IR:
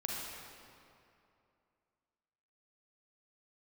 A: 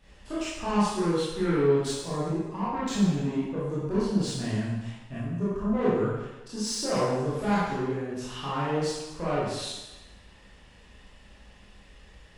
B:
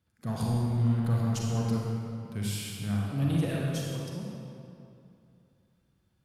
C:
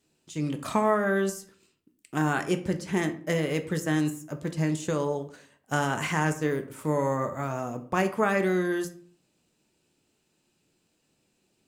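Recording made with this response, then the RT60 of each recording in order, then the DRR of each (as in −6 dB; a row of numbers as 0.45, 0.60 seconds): B; 1.1, 2.6, 0.50 seconds; −10.0, −3.5, 6.5 decibels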